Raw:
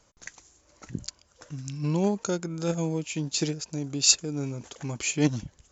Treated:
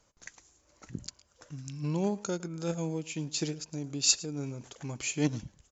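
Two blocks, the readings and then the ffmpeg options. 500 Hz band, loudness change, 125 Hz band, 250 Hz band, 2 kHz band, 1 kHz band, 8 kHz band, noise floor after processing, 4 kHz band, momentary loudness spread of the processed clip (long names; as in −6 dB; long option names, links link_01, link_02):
−5.0 dB, −5.0 dB, −5.0 dB, −5.0 dB, −5.0 dB, −5.0 dB, can't be measured, −69 dBFS, −5.0 dB, 19 LU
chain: -af "aecho=1:1:109:0.0944,volume=-5dB"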